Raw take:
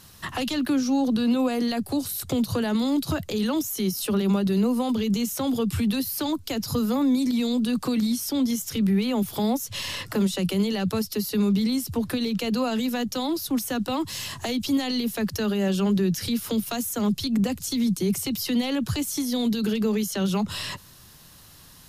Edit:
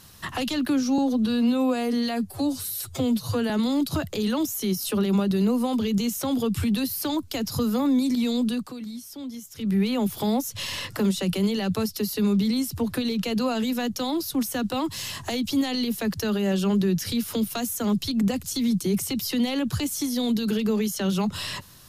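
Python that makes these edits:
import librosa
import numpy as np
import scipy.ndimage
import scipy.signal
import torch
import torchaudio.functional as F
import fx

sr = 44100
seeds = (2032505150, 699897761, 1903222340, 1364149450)

y = fx.edit(x, sr, fx.stretch_span(start_s=0.98, length_s=1.68, factor=1.5),
    fx.fade_down_up(start_s=7.63, length_s=1.31, db=-12.0, fade_s=0.24), tone=tone)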